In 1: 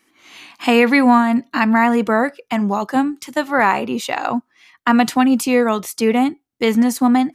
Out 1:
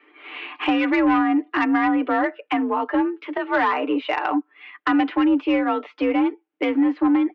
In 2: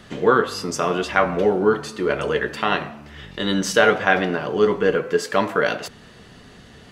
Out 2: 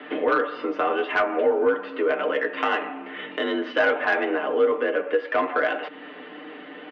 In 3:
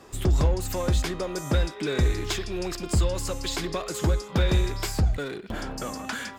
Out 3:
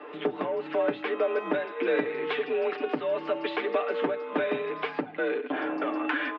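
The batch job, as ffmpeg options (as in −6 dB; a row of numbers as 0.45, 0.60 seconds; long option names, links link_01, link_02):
-af "aeval=exprs='0.473*(abs(mod(val(0)/0.473+3,4)-2)-1)':channel_layout=same,acompressor=threshold=-33dB:ratio=2,highpass=frequency=210:width_type=q:width=0.5412,highpass=frequency=210:width_type=q:width=1.307,lowpass=frequency=2900:width_type=q:width=0.5176,lowpass=frequency=2900:width_type=q:width=0.7071,lowpass=frequency=2900:width_type=q:width=1.932,afreqshift=51,aecho=1:1:6.7:0.71,asoftclip=type=tanh:threshold=-16dB,volume=6dB"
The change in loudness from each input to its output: −4.5, −3.5, −2.0 LU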